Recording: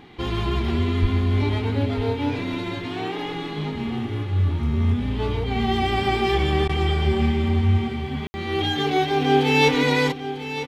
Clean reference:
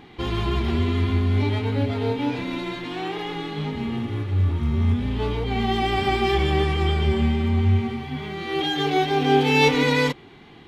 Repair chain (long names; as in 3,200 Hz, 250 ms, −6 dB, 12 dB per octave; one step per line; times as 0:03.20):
0:01.01–0:01.13: high-pass filter 140 Hz 24 dB per octave
ambience match 0:08.27–0:08.34
repair the gap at 0:06.68, 11 ms
echo removal 947 ms −12 dB